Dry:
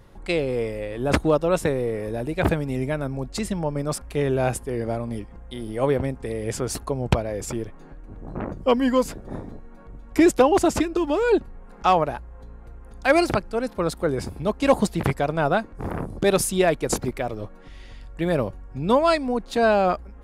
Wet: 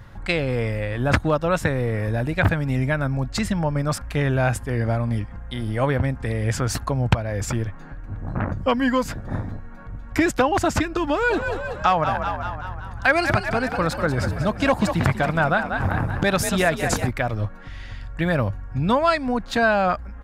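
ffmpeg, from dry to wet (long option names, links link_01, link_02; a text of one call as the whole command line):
ffmpeg -i in.wav -filter_complex "[0:a]asplit=3[link_01][link_02][link_03];[link_01]afade=type=out:start_time=11.29:duration=0.02[link_04];[link_02]asplit=7[link_05][link_06][link_07][link_08][link_09][link_10][link_11];[link_06]adelay=190,afreqshift=45,volume=-10dB[link_12];[link_07]adelay=380,afreqshift=90,volume=-15dB[link_13];[link_08]adelay=570,afreqshift=135,volume=-20.1dB[link_14];[link_09]adelay=760,afreqshift=180,volume=-25.1dB[link_15];[link_10]adelay=950,afreqshift=225,volume=-30.1dB[link_16];[link_11]adelay=1140,afreqshift=270,volume=-35.2dB[link_17];[link_05][link_12][link_13][link_14][link_15][link_16][link_17]amix=inputs=7:normalize=0,afade=type=in:start_time=11.29:duration=0.02,afade=type=out:start_time=17.06:duration=0.02[link_18];[link_03]afade=type=in:start_time=17.06:duration=0.02[link_19];[link_04][link_18][link_19]amix=inputs=3:normalize=0,equalizer=frequency=100:width_type=o:width=0.67:gain=9,equalizer=frequency=400:width_type=o:width=0.67:gain=-9,equalizer=frequency=1600:width_type=o:width=0.67:gain=7,equalizer=frequency=10000:width_type=o:width=0.67:gain=-7,acompressor=threshold=-24dB:ratio=2,volume=5dB" out.wav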